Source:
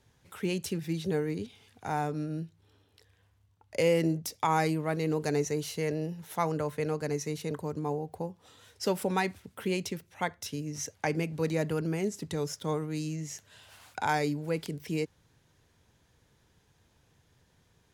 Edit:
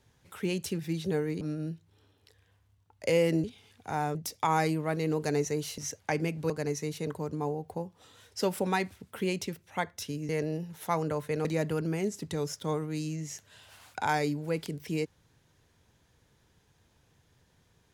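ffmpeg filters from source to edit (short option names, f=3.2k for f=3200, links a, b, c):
-filter_complex "[0:a]asplit=8[a][b][c][d][e][f][g][h];[a]atrim=end=1.412[i];[b]atrim=start=2.118:end=4.152[j];[c]atrim=start=1.408:end=2.122[k];[d]atrim=start=4.148:end=5.782[l];[e]atrim=start=10.728:end=11.452[m];[f]atrim=start=6.938:end=10.732[n];[g]atrim=start=5.778:end=6.942[o];[h]atrim=start=11.448[p];[i][j]acrossfade=d=0.004:c1=hsin:c2=hsin[q];[q][k]acrossfade=d=0.004:c1=hsin:c2=hsin[r];[r][l]acrossfade=d=0.004:c1=hsin:c2=hsin[s];[s][m]acrossfade=d=0.004:c1=hsin:c2=hsin[t];[t][n]acrossfade=d=0.004:c1=hsin:c2=hsin[u];[u][o]acrossfade=d=0.004:c1=hsin:c2=hsin[v];[v][p]acrossfade=d=0.004:c1=hsin:c2=hsin"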